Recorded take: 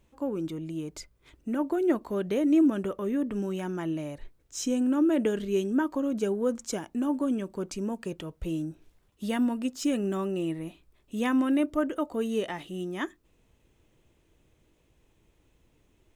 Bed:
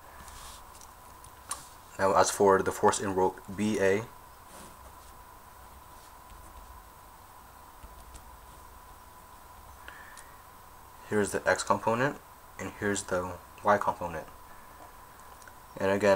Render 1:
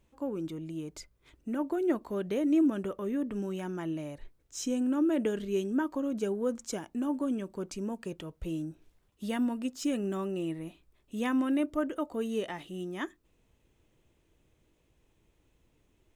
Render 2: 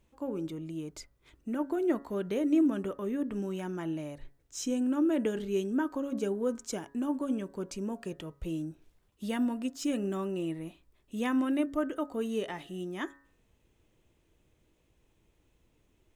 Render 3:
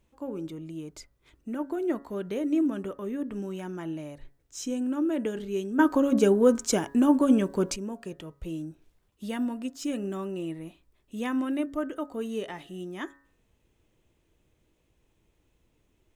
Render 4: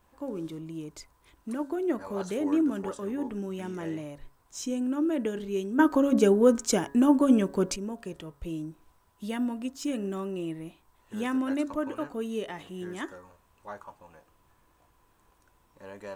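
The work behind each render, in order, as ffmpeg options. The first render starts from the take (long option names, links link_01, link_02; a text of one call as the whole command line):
ffmpeg -i in.wav -af "volume=-3.5dB" out.wav
ffmpeg -i in.wav -af "bandreject=frequency=139.3:width_type=h:width=4,bandreject=frequency=278.6:width_type=h:width=4,bandreject=frequency=417.9:width_type=h:width=4,bandreject=frequency=557.2:width_type=h:width=4,bandreject=frequency=696.5:width_type=h:width=4,bandreject=frequency=835.8:width_type=h:width=4,bandreject=frequency=975.1:width_type=h:width=4,bandreject=frequency=1114.4:width_type=h:width=4,bandreject=frequency=1253.7:width_type=h:width=4,bandreject=frequency=1393:width_type=h:width=4,bandreject=frequency=1532.3:width_type=h:width=4,bandreject=frequency=1671.6:width_type=h:width=4,bandreject=frequency=1810.9:width_type=h:width=4,bandreject=frequency=1950.2:width_type=h:width=4" out.wav
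ffmpeg -i in.wav -filter_complex "[0:a]asplit=3[link_01][link_02][link_03];[link_01]atrim=end=5.792[link_04];[link_02]atrim=start=5.788:end=7.762,asetpts=PTS-STARTPTS,volume=11dB[link_05];[link_03]atrim=start=7.758[link_06];[link_04][link_05]acrossfade=duration=0.004:curve1=hsin:curve2=hsin[link_07];[link_07][link_06]acrossfade=duration=0.004:curve1=hsin:curve2=hsin" out.wav
ffmpeg -i in.wav -i bed.wav -filter_complex "[1:a]volume=-17.5dB[link_01];[0:a][link_01]amix=inputs=2:normalize=0" out.wav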